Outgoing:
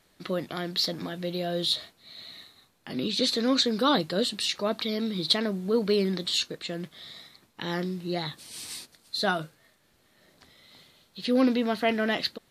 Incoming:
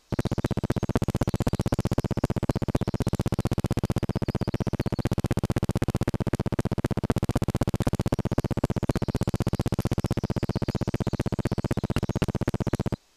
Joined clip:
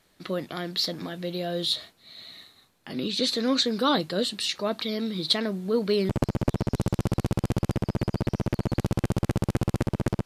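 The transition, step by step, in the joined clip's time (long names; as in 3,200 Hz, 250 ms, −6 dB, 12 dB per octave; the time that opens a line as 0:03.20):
outgoing
0:06.09: continue with incoming from 0:02.36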